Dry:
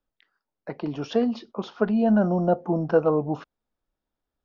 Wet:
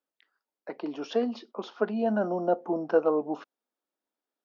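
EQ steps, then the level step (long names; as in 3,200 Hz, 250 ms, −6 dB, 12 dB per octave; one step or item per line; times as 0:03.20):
high-pass filter 250 Hz 24 dB per octave
−3.0 dB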